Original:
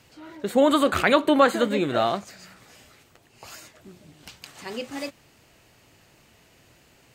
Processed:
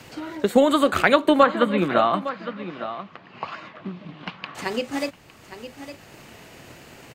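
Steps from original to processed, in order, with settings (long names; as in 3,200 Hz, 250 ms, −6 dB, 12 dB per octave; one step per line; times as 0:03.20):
transient designer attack +6 dB, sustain 0 dB
0:01.43–0:04.55: loudspeaker in its box 150–3,400 Hz, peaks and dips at 180 Hz +9 dB, 410 Hz −3 dB, 1,100 Hz +10 dB
single-tap delay 859 ms −17.5 dB
multiband upward and downward compressor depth 40%
level +1 dB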